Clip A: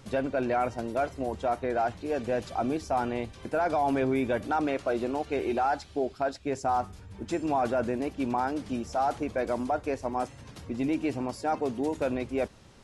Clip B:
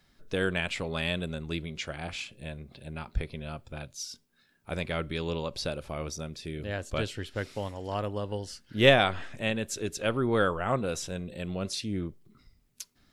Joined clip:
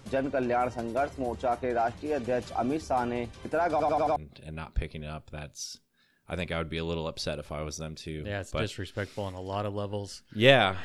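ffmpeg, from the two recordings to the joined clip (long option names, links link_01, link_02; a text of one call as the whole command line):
ffmpeg -i cue0.wav -i cue1.wav -filter_complex "[0:a]apad=whole_dur=10.84,atrim=end=10.84,asplit=5[link_01][link_02][link_03][link_04][link_05];[link_01]atrim=end=3.802[link_06];[link_02]atrim=start=3.708:end=3.802[link_07];[link_03]atrim=start=3.708:end=3.802[link_08];[link_04]atrim=start=3.708:end=3.802[link_09];[link_05]atrim=start=3.708:end=3.802[link_10];[1:a]atrim=start=2.548:end=9.23[link_11];[link_06][link_07]acrossfade=duration=0.004:curve1=hsin:curve2=hsin[link_12];[link_12][link_08]acrossfade=duration=0.004:curve1=hsin:curve2=hsin[link_13];[link_13][link_09]acrossfade=duration=0.004:curve1=hsin:curve2=hsin[link_14];[link_14][link_10]acrossfade=duration=0.004:curve1=hsin:curve2=hsin[link_15];[link_15][link_11]acrossfade=duration=0.004:curve1=hsin:curve2=hsin" out.wav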